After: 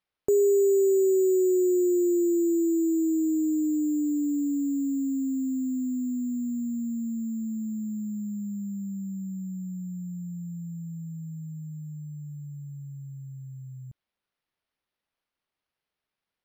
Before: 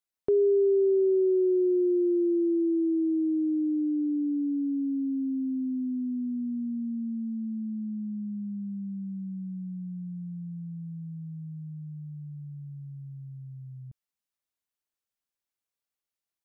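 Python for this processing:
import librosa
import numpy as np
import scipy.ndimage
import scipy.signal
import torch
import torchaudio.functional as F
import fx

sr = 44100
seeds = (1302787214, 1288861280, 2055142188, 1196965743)

y = np.repeat(x[::6], 6)[:len(x)]
y = F.gain(torch.from_numpy(y), 1.5).numpy()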